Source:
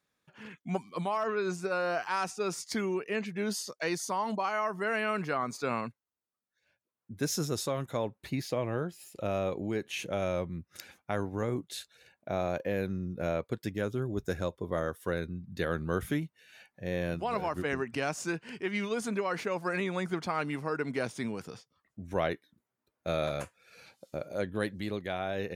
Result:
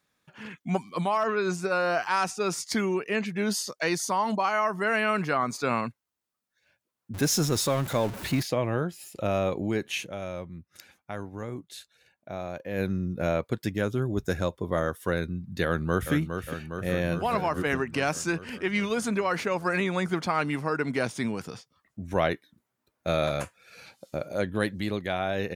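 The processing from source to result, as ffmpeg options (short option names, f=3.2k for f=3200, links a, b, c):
-filter_complex "[0:a]asettb=1/sr,asplit=3[a][b][c];[a]atrim=end=7.144[d];[b]atrim=start=7.14:end=8.43,asetpts=PTS-STARTPTS,afade=t=in:d=0.004:c=qsin,afade=t=out:st=1.286:d=0.004:c=qsin,aeval=exprs='val(0)+0.5*0.0126*sgn(val(0))':c=same[e];[c]atrim=start=8.426[f];[d][e]acrossfade=d=0.004:c1=hsin:c2=qsin[g];[g][f]acrossfade=d=0.004:c1=qsin:c2=hsin,asplit=2[h][i];[i]afade=t=in:st=15.65:d=0.01,afade=t=out:st=16.12:d=0.01,aecho=0:1:410|820|1230|1640|2050|2460|2870|3280|3690|4100|4510|4920:0.446684|0.335013|0.25126|0.188445|0.141333|0.106|0.0795001|0.0596251|0.0447188|0.0335391|0.0251543|0.0188657[j];[h][j]amix=inputs=2:normalize=0,asplit=3[k][l][m];[k]atrim=end=10.12,asetpts=PTS-STARTPTS,afade=t=out:st=9.96:d=0.16:c=qua:silence=0.354813[n];[l]atrim=start=10.12:end=12.65,asetpts=PTS-STARTPTS,volume=-9dB[o];[m]atrim=start=12.65,asetpts=PTS-STARTPTS,afade=t=in:d=0.16:c=qua:silence=0.354813[p];[n][o][p]concat=n=3:v=0:a=1,equalizer=f=440:t=o:w=0.77:g=-2.5,volume=6dB"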